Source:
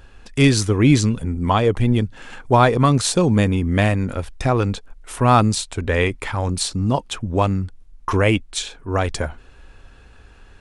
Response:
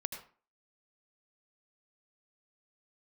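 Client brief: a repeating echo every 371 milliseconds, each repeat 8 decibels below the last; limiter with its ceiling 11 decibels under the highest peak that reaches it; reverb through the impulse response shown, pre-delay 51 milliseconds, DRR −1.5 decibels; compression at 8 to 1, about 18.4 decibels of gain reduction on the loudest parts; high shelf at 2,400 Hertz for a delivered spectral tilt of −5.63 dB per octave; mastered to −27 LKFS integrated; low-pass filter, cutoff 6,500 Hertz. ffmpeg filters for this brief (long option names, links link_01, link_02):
-filter_complex "[0:a]lowpass=6500,highshelf=frequency=2400:gain=-4.5,acompressor=threshold=-29dB:ratio=8,alimiter=level_in=2.5dB:limit=-24dB:level=0:latency=1,volume=-2.5dB,aecho=1:1:371|742|1113|1484|1855:0.398|0.159|0.0637|0.0255|0.0102,asplit=2[link_01][link_02];[1:a]atrim=start_sample=2205,adelay=51[link_03];[link_02][link_03]afir=irnorm=-1:irlink=0,volume=1dB[link_04];[link_01][link_04]amix=inputs=2:normalize=0,volume=5dB"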